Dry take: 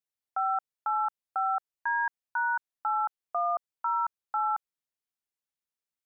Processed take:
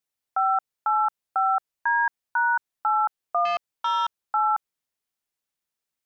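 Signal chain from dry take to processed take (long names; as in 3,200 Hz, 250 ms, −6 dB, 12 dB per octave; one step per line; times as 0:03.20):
0:03.45–0:04.21: saturating transformer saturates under 1,400 Hz
level +6 dB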